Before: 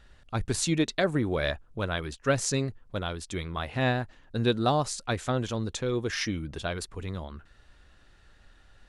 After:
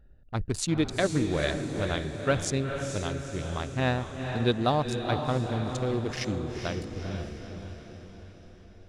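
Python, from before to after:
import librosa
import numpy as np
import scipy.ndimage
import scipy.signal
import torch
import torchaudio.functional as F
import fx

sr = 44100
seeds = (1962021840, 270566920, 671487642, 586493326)

y = fx.wiener(x, sr, points=41)
y = fx.echo_diffused(y, sr, ms=462, feedback_pct=53, wet_db=-6.0)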